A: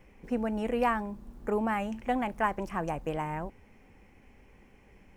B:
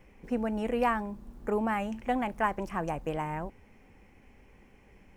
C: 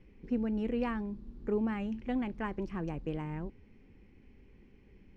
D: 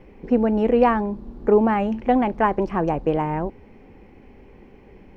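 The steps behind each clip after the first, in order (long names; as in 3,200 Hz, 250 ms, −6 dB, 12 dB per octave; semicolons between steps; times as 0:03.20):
no processing that can be heard
drawn EQ curve 390 Hz 0 dB, 660 Hz −14 dB, 4,400 Hz −4 dB, 10,000 Hz −26 dB
parametric band 730 Hz +14.5 dB 1.8 octaves; level +8.5 dB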